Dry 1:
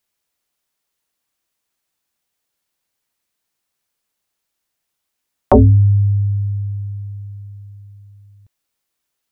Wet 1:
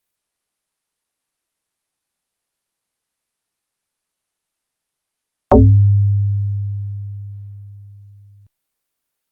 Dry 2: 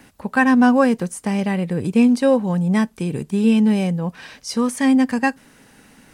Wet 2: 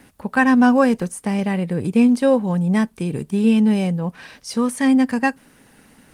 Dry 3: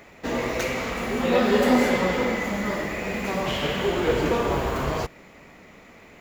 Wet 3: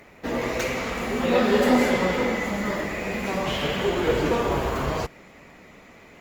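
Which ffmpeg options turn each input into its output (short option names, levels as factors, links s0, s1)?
-ar 48000 -c:a libopus -b:a 32k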